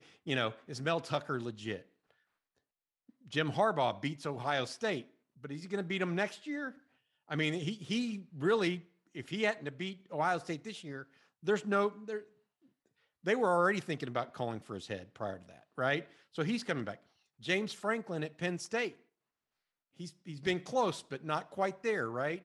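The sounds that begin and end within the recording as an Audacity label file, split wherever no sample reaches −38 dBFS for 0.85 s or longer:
3.330000	12.190000	sound
13.260000	18.880000	sound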